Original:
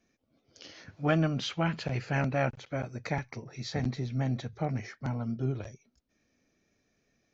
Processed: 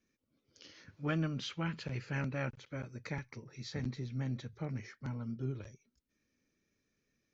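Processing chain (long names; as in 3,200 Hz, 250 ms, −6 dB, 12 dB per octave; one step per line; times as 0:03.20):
parametric band 710 Hz −13 dB 0.38 octaves
level −6.5 dB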